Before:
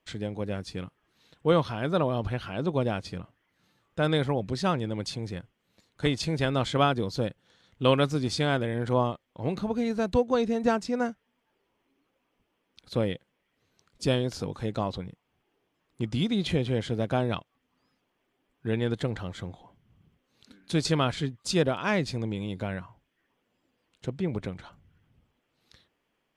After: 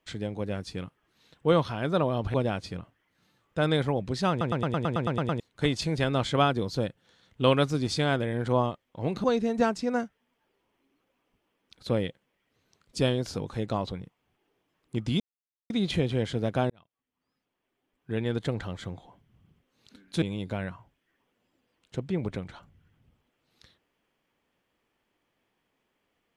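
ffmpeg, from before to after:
-filter_complex "[0:a]asplit=16[s0][s1][s2][s3][s4][s5][s6][s7][s8][s9][s10][s11][s12][s13][s14][s15];[s0]atrim=end=2.342[s16];[s1]atrim=start=2.748:end=4.822[s17];[s2]atrim=start=4.708:end=4.822[s18];[s3]atrim=start=4.708:end=4.822[s19];[s4]atrim=start=4.708:end=4.822[s20];[s5]atrim=start=4.708:end=4.822[s21];[s6]atrim=start=4.708:end=4.822[s22];[s7]atrim=start=4.708:end=4.822[s23];[s8]atrim=start=4.708:end=4.822[s24];[s9]atrim=start=4.708:end=4.822[s25];[s10]atrim=start=4.708:end=4.822[s26];[s11]atrim=start=5.808:end=9.652[s27];[s12]atrim=start=10.298:end=16.26,asetpts=PTS-STARTPTS,afade=t=out:st=5.958:d=0.004:c=hsin,apad=pad_dur=0.5[s28];[s13]atrim=start=16.26:end=17.26,asetpts=PTS-STARTPTS,afade=t=in:d=0.004:c=hsin,afade=t=out:st=0.996:d=0.004:c=hsin[s29];[s14]atrim=start=17.26:end=20.782,asetpts=PTS-STARTPTS,afade=t=in:d=1.86[s30];[s15]atrim=start=22.318[s31];[s16][s17]acrossfade=d=0.004:c1=hsin:c2=hsin[s32];[s32][s18]acrossfade=d=0.004:c1=hsin:c2=hsin[s33];[s33][s19]acrossfade=d=0.004:c1=hsin:c2=hsin[s34];[s34][s20]acrossfade=d=0.004:c1=hsin:c2=hsin[s35];[s35][s21]acrossfade=d=0.004:c1=hsin:c2=hsin[s36];[s36][s22]acrossfade=d=0.004:c1=hsin:c2=hsin[s37];[s37][s23]acrossfade=d=0.004:c1=hsin:c2=hsin[s38];[s38][s24]acrossfade=d=0.004:c1=hsin:c2=hsin[s39];[s39][s25]acrossfade=d=0.004:c1=hsin:c2=hsin[s40];[s40][s26]acrossfade=d=0.004:c1=hsin:c2=hsin[s41];[s41][s27]acrossfade=d=0.004:c1=hsin:c2=hsin[s42];[s28][s29][s30]concat=n=3:v=0:a=1[s43];[s42][s43]acrossfade=d=0.004:c1=hsin:c2=hsin[s44];[s44][s31]acrossfade=d=0.004:c1=hsin:c2=hsin"

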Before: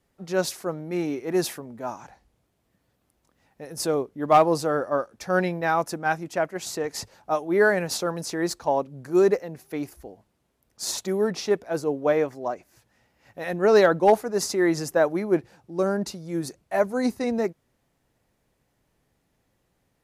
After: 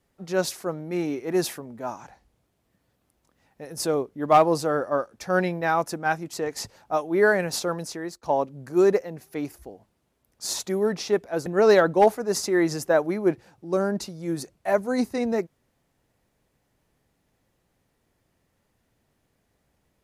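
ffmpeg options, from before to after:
-filter_complex "[0:a]asplit=4[s0][s1][s2][s3];[s0]atrim=end=6.332[s4];[s1]atrim=start=6.708:end=8.61,asetpts=PTS-STARTPTS,afade=t=out:st=1.422:d=0.48:silence=0.0707946[s5];[s2]atrim=start=8.61:end=11.842,asetpts=PTS-STARTPTS,afade=t=in:d=0.004:c=hsin:silence=0.0707946[s6];[s3]atrim=start=13.518[s7];[s5][s6]concat=n=2:v=0:a=1[s8];[s4][s8]acrossfade=d=0.004:c1=hsin:c2=hsin[s9];[s9][s7]acrossfade=d=0.004:c1=hsin:c2=hsin"

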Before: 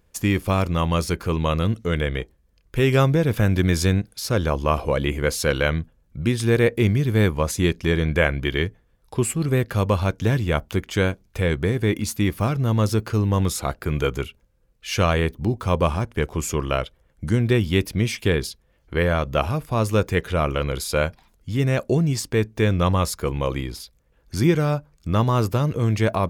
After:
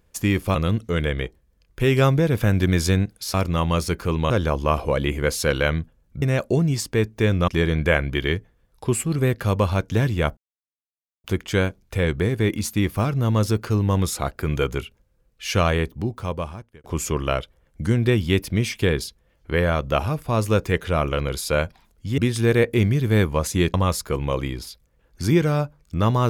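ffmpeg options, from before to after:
-filter_complex "[0:a]asplit=10[s0][s1][s2][s3][s4][s5][s6][s7][s8][s9];[s0]atrim=end=0.552[s10];[s1]atrim=start=1.508:end=4.302[s11];[s2]atrim=start=0.548:end=1.512[s12];[s3]atrim=start=4.298:end=6.222[s13];[s4]atrim=start=21.608:end=22.872[s14];[s5]atrim=start=7.778:end=10.67,asetpts=PTS-STARTPTS,afade=t=out:st=2.888:d=0.004:c=hsin,apad=pad_dur=0.87[s15];[s6]atrim=start=10.67:end=16.27,asetpts=PTS-STARTPTS,afade=t=in:d=0.004:c=hsin,afade=t=out:st=4.44:d=1.16[s16];[s7]atrim=start=16.27:end=21.612,asetpts=PTS-STARTPTS,afade=t=in:d=0.004:c=hsin[s17];[s8]atrim=start=6.218:end=7.782[s18];[s9]atrim=start=22.868[s19];[s10][s11]acrossfade=d=0.004:c1=hsin:c2=hsin[s20];[s20][s12]acrossfade=d=0.004:c1=hsin:c2=hsin[s21];[s21][s13]acrossfade=d=0.004:c1=hsin:c2=hsin[s22];[s22][s14]acrossfade=d=0.004:c1=hsin:c2=hsin[s23];[s15][s16][s17]concat=n=3:v=0:a=1[s24];[s23][s24]acrossfade=d=0.004:c1=hsin:c2=hsin[s25];[s25][s18]acrossfade=d=0.004:c1=hsin:c2=hsin[s26];[s26][s19]acrossfade=d=0.004:c1=hsin:c2=hsin"

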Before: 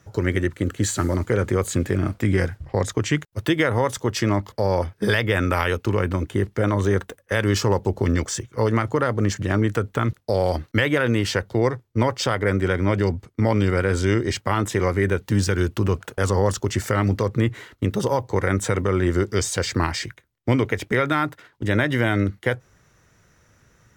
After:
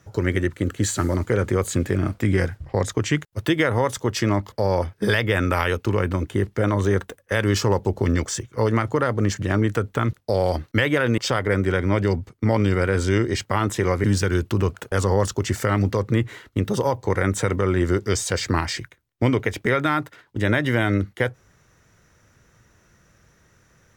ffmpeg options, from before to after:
-filter_complex "[0:a]asplit=3[s0][s1][s2];[s0]atrim=end=11.182[s3];[s1]atrim=start=12.138:end=15.002[s4];[s2]atrim=start=15.298[s5];[s3][s4]acrossfade=d=0.004:c1=hsin:c2=hsin[s6];[s6][s5]acrossfade=d=0.004:c1=hsin:c2=hsin"

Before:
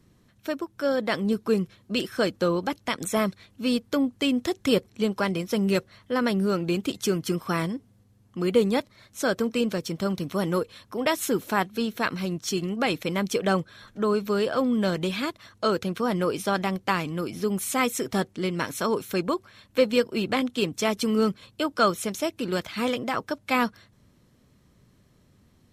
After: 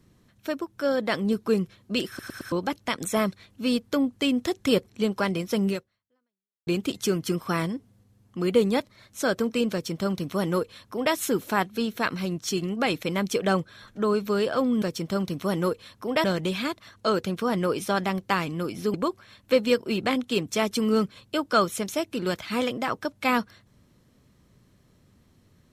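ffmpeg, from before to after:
-filter_complex "[0:a]asplit=9[s0][s1][s2][s3][s4][s5][s6][s7][s8];[s0]atrim=end=2.192[s9];[s1]atrim=start=2.078:end=2.192[s10];[s2]atrim=start=2.078:end=2.192[s11];[s3]atrim=start=2.078:end=2.192[s12];[s4]atrim=start=2.518:end=6.67,asetpts=PTS-STARTPTS,afade=t=out:st=3.162:d=0.99:c=exp[s13];[s5]atrim=start=6.67:end=14.822,asetpts=PTS-STARTPTS,afade=t=in:d=0.004:c=hsin[s14];[s6]atrim=start=9.718:end=11.142[s15];[s7]atrim=start=14.818:end=17.522[s16];[s8]atrim=start=19.198[s17];[s9][s10]acrossfade=d=0.004:c1=hsin:c2=hsin[s18];[s18][s11]acrossfade=d=0.004:c1=hsin:c2=hsin[s19];[s19][s12]acrossfade=d=0.004:c1=hsin:c2=hsin[s20];[s13][s14]concat=n=2:v=0:a=1[s21];[s20][s21]acrossfade=d=0.004:c1=hsin:c2=hsin[s22];[s22][s15]acrossfade=d=0.004:c1=hsin:c2=hsin[s23];[s23][s16]acrossfade=d=0.004:c1=hsin:c2=hsin[s24];[s24][s17]acrossfade=d=0.004:c1=hsin:c2=hsin"

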